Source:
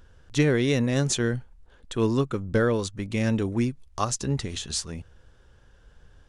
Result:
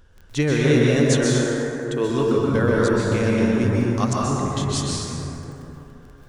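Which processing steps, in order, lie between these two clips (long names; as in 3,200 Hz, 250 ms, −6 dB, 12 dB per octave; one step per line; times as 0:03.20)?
0:01.00–0:02.10: low shelf with overshoot 250 Hz −11 dB, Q 1.5
0:04.13–0:04.57: low-pass filter 1,800 Hz
surface crackle 11 per second −36 dBFS
convolution reverb RT60 3.3 s, pre-delay 118 ms, DRR −5 dB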